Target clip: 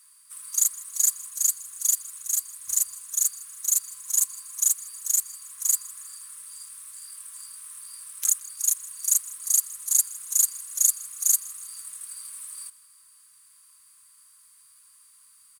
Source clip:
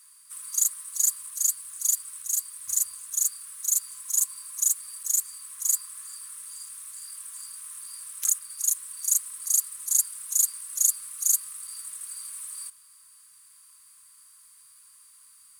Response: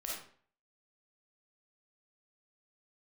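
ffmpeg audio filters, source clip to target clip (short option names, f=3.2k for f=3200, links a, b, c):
-filter_complex "[0:a]asplit=2[a][b];[b]aeval=exprs='sgn(val(0))*max(abs(val(0))-0.0211,0)':c=same,volume=-6dB[c];[a][c]amix=inputs=2:normalize=0,aecho=1:1:160|320|480|640:0.0891|0.0481|0.026|0.014,volume=-1.5dB"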